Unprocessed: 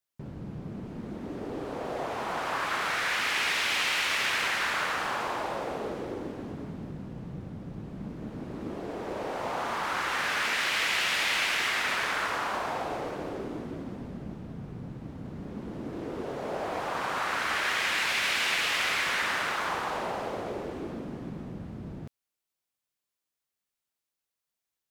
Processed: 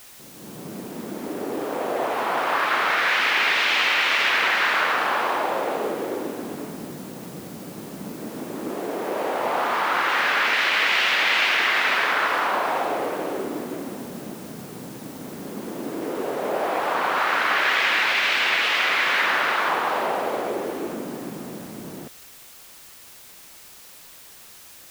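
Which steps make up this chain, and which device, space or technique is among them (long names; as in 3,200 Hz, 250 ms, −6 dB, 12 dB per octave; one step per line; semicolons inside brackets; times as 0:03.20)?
dictaphone (band-pass filter 270–3,900 Hz; automatic gain control gain up to 13 dB; tape wow and flutter; white noise bed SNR 21 dB)
level −4 dB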